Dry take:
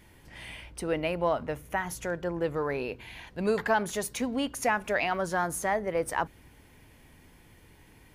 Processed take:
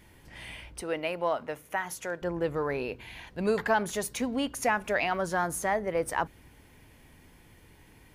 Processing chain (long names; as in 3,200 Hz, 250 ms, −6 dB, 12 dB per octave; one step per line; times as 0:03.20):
0:00.81–0:02.22: high-pass filter 420 Hz 6 dB per octave